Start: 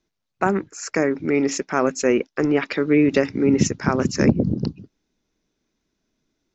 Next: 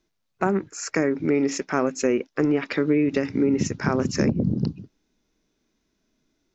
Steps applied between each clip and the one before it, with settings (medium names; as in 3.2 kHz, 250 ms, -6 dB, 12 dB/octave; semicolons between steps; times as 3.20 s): harmonic-percussive split percussive -7 dB; compression 6:1, threshold -22 dBFS, peak gain reduction 9.5 dB; trim +4.5 dB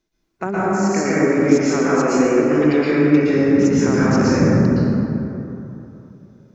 plate-style reverb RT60 3.1 s, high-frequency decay 0.4×, pre-delay 105 ms, DRR -9 dB; trim -2.5 dB